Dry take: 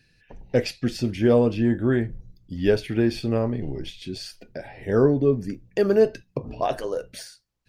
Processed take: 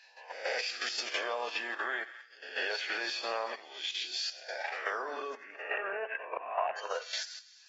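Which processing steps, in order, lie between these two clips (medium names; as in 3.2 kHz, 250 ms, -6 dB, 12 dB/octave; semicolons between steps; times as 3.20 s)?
reverse spectral sustain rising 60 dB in 0.56 s; 5.34–6.77 s: steep low-pass 2.7 kHz 72 dB/octave; thinning echo 89 ms, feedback 71%, high-pass 1.1 kHz, level -14 dB; peak limiter -13.5 dBFS, peak gain reduction 7 dB; level held to a coarse grid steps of 13 dB; high-pass 790 Hz 24 dB/octave; compression 3:1, threshold -41 dBFS, peak gain reduction 9.5 dB; trim +8.5 dB; AAC 24 kbps 44.1 kHz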